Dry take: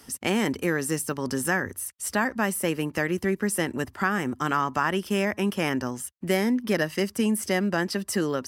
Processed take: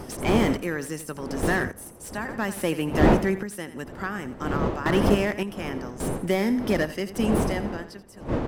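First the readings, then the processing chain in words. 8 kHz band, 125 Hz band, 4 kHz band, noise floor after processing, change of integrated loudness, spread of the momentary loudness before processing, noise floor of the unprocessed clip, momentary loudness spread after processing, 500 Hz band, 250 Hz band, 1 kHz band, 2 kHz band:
−6.5 dB, +3.5 dB, −2.0 dB, −43 dBFS, +0.5 dB, 4 LU, −54 dBFS, 13 LU, +1.5 dB, +1.0 dB, −1.0 dB, −2.5 dB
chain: fade-out on the ending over 2.39 s
wind on the microphone 440 Hz −28 dBFS
repeating echo 84 ms, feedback 34%, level −14 dB
sample-and-hold tremolo, depth 80%
slew-rate limiting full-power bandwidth 78 Hz
level +4.5 dB

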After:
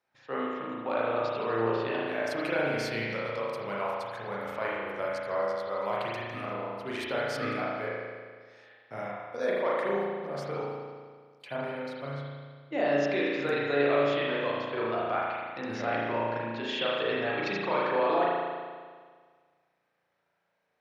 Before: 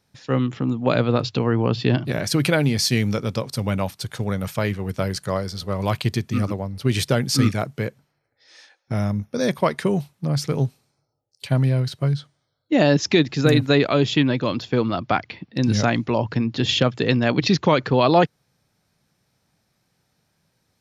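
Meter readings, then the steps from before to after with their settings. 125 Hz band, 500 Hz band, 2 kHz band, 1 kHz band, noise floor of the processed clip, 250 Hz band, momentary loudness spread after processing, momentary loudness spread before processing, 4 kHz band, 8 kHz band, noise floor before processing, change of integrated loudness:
−21.5 dB, −5.5 dB, −5.0 dB, −4.5 dB, −77 dBFS, −14.5 dB, 11 LU, 9 LU, −13.0 dB, below −20 dB, −72 dBFS, −9.5 dB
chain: three-way crossover with the lows and the highs turned down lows −21 dB, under 410 Hz, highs −14 dB, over 2,800 Hz
brickwall limiter −15 dBFS, peak gain reduction 7 dB
spring reverb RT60 1.7 s, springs 35 ms, chirp 50 ms, DRR −6 dB
level −8.5 dB

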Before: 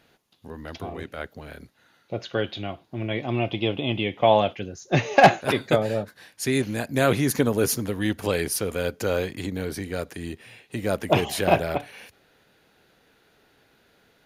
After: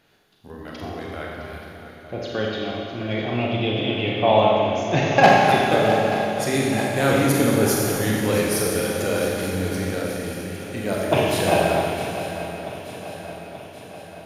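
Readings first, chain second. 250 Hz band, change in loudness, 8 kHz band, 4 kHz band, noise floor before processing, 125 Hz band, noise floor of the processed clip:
+4.0 dB, +3.5 dB, +4.0 dB, +4.0 dB, −63 dBFS, +3.5 dB, −41 dBFS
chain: feedback echo with a long and a short gap by turns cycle 881 ms, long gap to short 3 to 1, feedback 56%, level −12.5 dB
four-comb reverb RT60 2.2 s, combs from 29 ms, DRR −3 dB
level −1.5 dB

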